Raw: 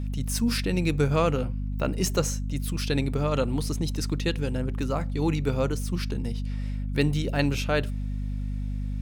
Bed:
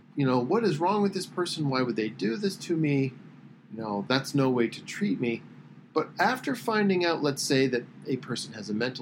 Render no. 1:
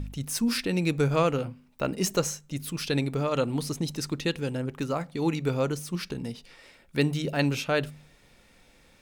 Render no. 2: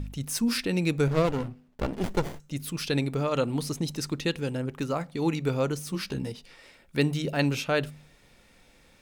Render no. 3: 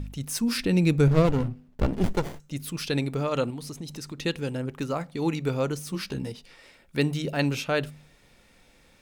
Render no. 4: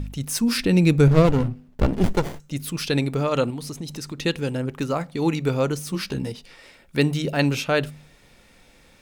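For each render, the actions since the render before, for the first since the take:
de-hum 50 Hz, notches 5
1.07–2.40 s: sliding maximum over 33 samples; 5.85–6.32 s: doubling 15 ms -3 dB
0.59–2.13 s: bass shelf 250 Hz +9 dB; 3.50–4.20 s: compression 2.5:1, threshold -36 dBFS
trim +4.5 dB

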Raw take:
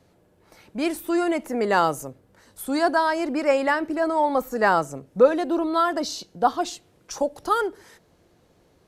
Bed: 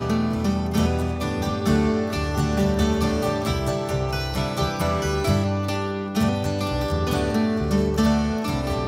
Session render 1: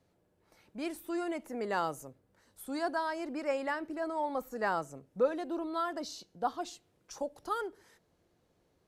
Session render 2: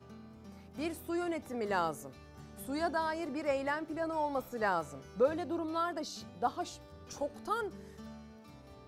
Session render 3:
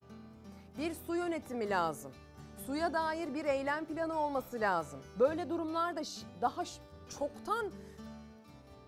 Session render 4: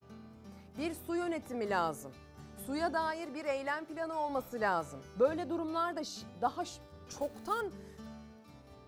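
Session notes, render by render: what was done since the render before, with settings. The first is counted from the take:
trim -12.5 dB
add bed -29.5 dB
expander -51 dBFS
3.11–4.29 s: bass shelf 380 Hz -7.5 dB; 7.21–7.61 s: companded quantiser 6-bit

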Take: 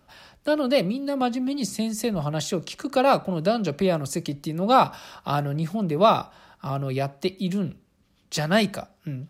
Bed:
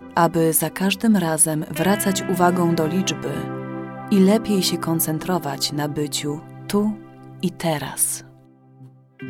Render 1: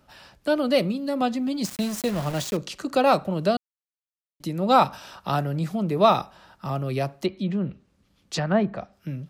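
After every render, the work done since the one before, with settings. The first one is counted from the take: 1.64–2.57 s: small samples zeroed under -30.5 dBFS; 3.57–4.40 s: mute; 7.25–8.93 s: low-pass that closes with the level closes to 1.1 kHz, closed at -19.5 dBFS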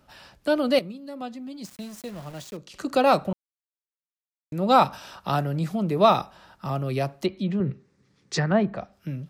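0.79–2.74 s: gain -11 dB; 3.33–4.52 s: mute; 7.60–8.51 s: cabinet simulation 110–9000 Hz, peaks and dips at 130 Hz +10 dB, 410 Hz +9 dB, 640 Hz -6 dB, 1.9 kHz +7 dB, 3 kHz -7 dB, 5.6 kHz +3 dB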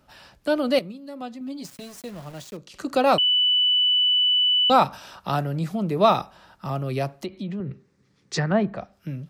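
1.40–2.00 s: comb 7.2 ms, depth 78%; 3.18–4.70 s: bleep 2.98 kHz -16.5 dBFS; 7.18–7.71 s: compression 2.5:1, threshold -29 dBFS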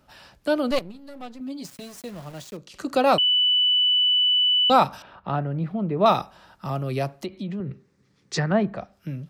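0.71–1.40 s: partial rectifier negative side -12 dB; 5.02–6.06 s: distance through air 460 m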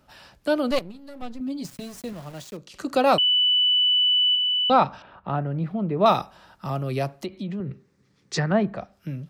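1.22–2.13 s: bass shelf 190 Hz +10.5 dB; 4.35–5.46 s: distance through air 180 m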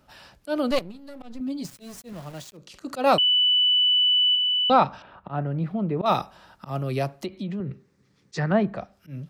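slow attack 113 ms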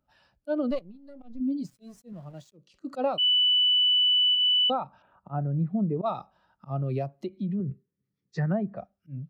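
compression 16:1, threshold -24 dBFS, peak gain reduction 12 dB; spectral contrast expander 1.5:1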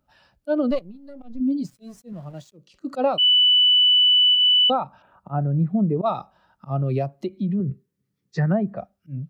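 trim +6 dB

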